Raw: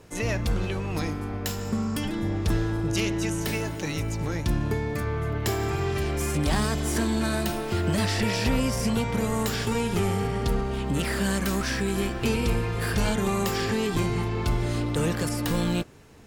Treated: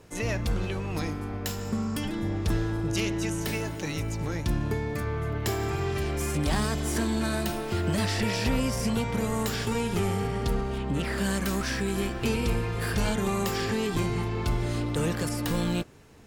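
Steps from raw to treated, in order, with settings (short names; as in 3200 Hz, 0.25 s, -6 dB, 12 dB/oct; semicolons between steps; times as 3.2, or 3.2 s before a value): 10.78–11.18 high shelf 5800 Hz -10.5 dB; gain -2 dB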